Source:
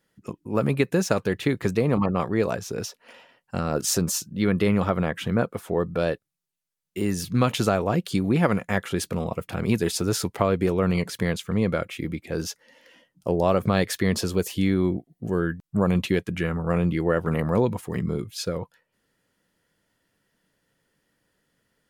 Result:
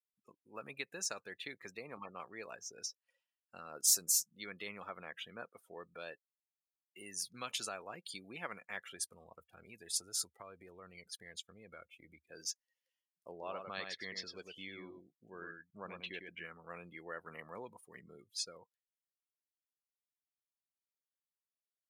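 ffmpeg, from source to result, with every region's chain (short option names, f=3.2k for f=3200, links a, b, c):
-filter_complex "[0:a]asettb=1/sr,asplit=3[a][b][c];[a]atrim=end=8.964[d];[b]atrim=start=8.96:end=12.29,asetpts=PTS-STARTPTS,afade=t=in:d=0.004:c=qsin,afade=t=out:st=3.326:d=0.004:c=qsin,agate=range=-7dB:threshold=-36dB:ratio=16:release=100:detection=peak,equalizer=f=74:w=1.7:g=13,acompressor=threshold=-25dB:ratio=2.5:attack=3.2:release=140:knee=1:detection=peak[e];[c]atrim=start=12.286[f];[d][e]acrossfade=d=0.004:c1=hsin:c2=qsin[g];[g][f]acrossfade=d=0.004:c1=qsin:c2=hsin,asettb=1/sr,asplit=3[h][i][j];[h]atrim=end=13.324[k];[i]atrim=start=13.32:end=16.45,asetpts=PTS-STARTPTS,afade=t=in:d=0.004:c=qsin,afade=t=out:st=3.126:d=0.004:c=qsin,lowpass=4.1k,aecho=1:1:102:0.562,atrim=end_sample=138033[l];[j]atrim=start=16.446[m];[k][l]acrossfade=d=0.004:c1=hsin:c2=qsin[n];[n][m]acrossfade=d=0.004:c1=qsin:c2=hsin,afftdn=nr=26:nf=-37,aderivative,volume=-2dB"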